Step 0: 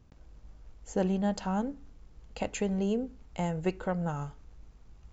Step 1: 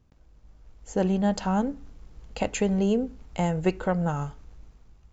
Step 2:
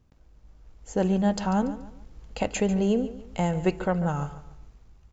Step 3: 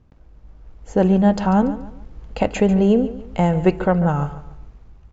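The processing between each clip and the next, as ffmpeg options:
-af "dynaudnorm=f=350:g=5:m=2.99,volume=0.668"
-af "aecho=1:1:143|286|429:0.188|0.064|0.0218"
-af "aemphasis=mode=reproduction:type=75fm,volume=2.37"

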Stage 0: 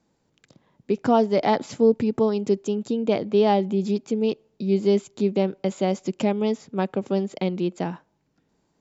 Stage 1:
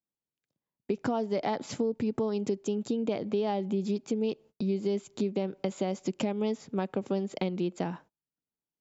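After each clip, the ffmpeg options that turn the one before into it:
-af "agate=range=0.0282:threshold=0.00501:ratio=16:detection=peak,alimiter=limit=0.224:level=0:latency=1:release=209,acompressor=threshold=0.0398:ratio=3"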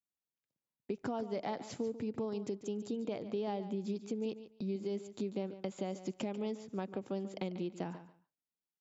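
-af "aecho=1:1:143|286:0.224|0.0403,volume=0.398"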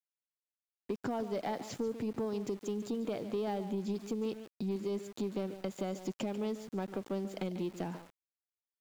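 -af "aeval=exprs='0.0668*(cos(1*acos(clip(val(0)/0.0668,-1,1)))-cos(1*PI/2))+0.00596*(cos(5*acos(clip(val(0)/0.0668,-1,1)))-cos(5*PI/2))':c=same,aeval=exprs='val(0)*gte(abs(val(0)),0.00299)':c=same"

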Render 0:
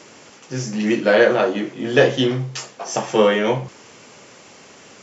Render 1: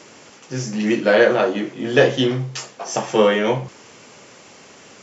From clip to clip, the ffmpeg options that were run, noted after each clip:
-af anull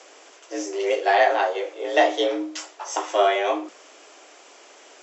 -af "afreqshift=180,volume=0.631"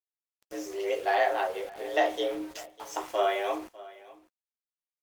-af "aeval=exprs='val(0)*gte(abs(val(0)),0.0168)':c=same,aecho=1:1:601:0.1,volume=0.447" -ar 48000 -c:a libopus -b:a 32k

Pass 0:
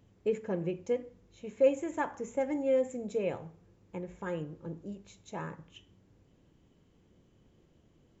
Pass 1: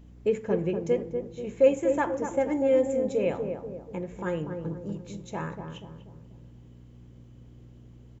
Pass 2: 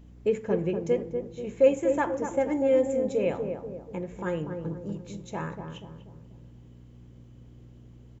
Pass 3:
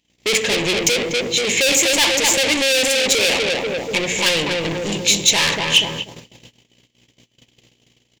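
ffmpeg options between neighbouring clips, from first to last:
-filter_complex "[0:a]aeval=exprs='val(0)+0.002*(sin(2*PI*60*n/s)+sin(2*PI*2*60*n/s)/2+sin(2*PI*3*60*n/s)/3+sin(2*PI*4*60*n/s)/4+sin(2*PI*5*60*n/s)/5)':c=same,asplit=2[s0][s1];[s1]adelay=242,lowpass=f=830:p=1,volume=0.562,asplit=2[s2][s3];[s3]adelay=242,lowpass=f=830:p=1,volume=0.52,asplit=2[s4][s5];[s5]adelay=242,lowpass=f=830:p=1,volume=0.52,asplit=2[s6][s7];[s7]adelay=242,lowpass=f=830:p=1,volume=0.52,asplit=2[s8][s9];[s9]adelay=242,lowpass=f=830:p=1,volume=0.52,asplit=2[s10][s11];[s11]adelay=242,lowpass=f=830:p=1,volume=0.52,asplit=2[s12][s13];[s13]adelay=242,lowpass=f=830:p=1,volume=0.52[s14];[s2][s4][s6][s8][s10][s12][s14]amix=inputs=7:normalize=0[s15];[s0][s15]amix=inputs=2:normalize=0,volume=1.78"
-af anull
-filter_complex "[0:a]agate=range=0.0112:threshold=0.00562:ratio=16:detection=peak,asplit=2[s0][s1];[s1]highpass=f=720:p=1,volume=89.1,asoftclip=type=tanh:threshold=0.335[s2];[s0][s2]amix=inputs=2:normalize=0,lowpass=f=1900:p=1,volume=0.501,aexciter=amount=12.6:drive=4:freq=2100,volume=0.531"

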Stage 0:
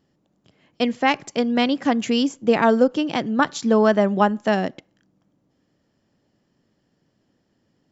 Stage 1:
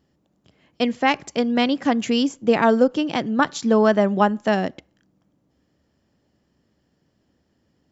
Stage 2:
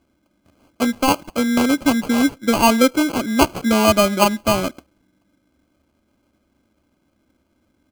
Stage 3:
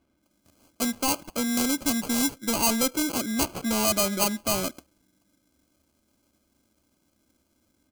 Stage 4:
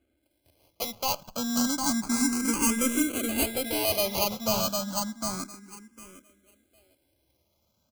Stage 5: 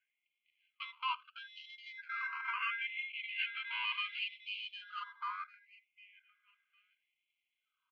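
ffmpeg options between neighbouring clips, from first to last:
-af "equalizer=f=69:t=o:w=0.29:g=14"
-af "aecho=1:1:3.4:0.59,acrusher=samples=24:mix=1:aa=0.000001,volume=1.12"
-filter_complex "[0:a]acrossover=split=4700[s0][s1];[s0]asoftclip=type=tanh:threshold=0.15[s2];[s1]dynaudnorm=f=160:g=3:m=4.47[s3];[s2][s3]amix=inputs=2:normalize=0,volume=0.501"
-filter_complex "[0:a]aecho=1:1:755|1510|2265:0.668|0.114|0.0193,asplit=2[s0][s1];[s1]afreqshift=0.3[s2];[s0][s2]amix=inputs=2:normalize=1"
-af "asuperpass=centerf=1400:order=12:qfactor=0.59,afftfilt=real='re*gte(b*sr/1024,890*pow(2100/890,0.5+0.5*sin(2*PI*0.72*pts/sr)))':imag='im*gte(b*sr/1024,890*pow(2100/890,0.5+0.5*sin(2*PI*0.72*pts/sr)))':win_size=1024:overlap=0.75"

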